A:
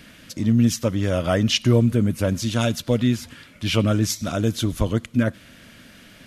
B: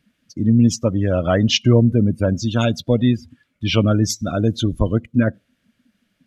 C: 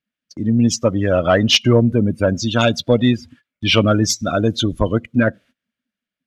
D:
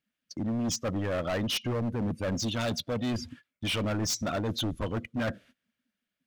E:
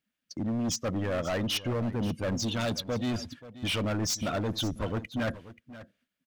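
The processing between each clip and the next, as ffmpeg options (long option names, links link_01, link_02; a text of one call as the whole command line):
ffmpeg -i in.wav -af "afftdn=noise_reduction=26:noise_floor=-30,volume=3.5dB" out.wav
ffmpeg -i in.wav -filter_complex "[0:a]agate=range=-21dB:threshold=-45dB:ratio=16:detection=peak,dynaudnorm=framelen=140:gausssize=9:maxgain=11.5dB,asplit=2[link_01][link_02];[link_02]highpass=frequency=720:poles=1,volume=8dB,asoftclip=type=tanh:threshold=-0.5dB[link_03];[link_01][link_03]amix=inputs=2:normalize=0,lowpass=frequency=5200:poles=1,volume=-6dB" out.wav
ffmpeg -i in.wav -af "areverse,acompressor=threshold=-23dB:ratio=6,areverse,volume=27dB,asoftclip=hard,volume=-27dB" out.wav
ffmpeg -i in.wav -af "aecho=1:1:532:0.158" out.wav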